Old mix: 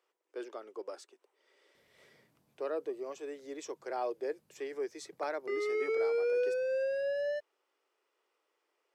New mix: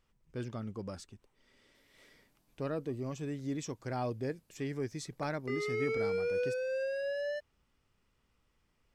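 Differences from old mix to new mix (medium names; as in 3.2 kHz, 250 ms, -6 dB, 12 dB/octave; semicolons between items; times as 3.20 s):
speech: remove steep high-pass 350 Hz 48 dB/octave; master: add tilt shelf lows -3.5 dB, about 1.3 kHz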